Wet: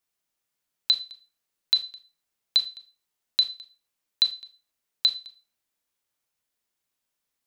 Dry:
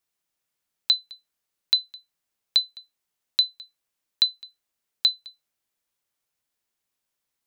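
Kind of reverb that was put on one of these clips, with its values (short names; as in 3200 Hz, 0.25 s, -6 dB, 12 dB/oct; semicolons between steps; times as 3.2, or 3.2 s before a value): Schroeder reverb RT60 0.3 s, combs from 26 ms, DRR 8 dB; gain -1 dB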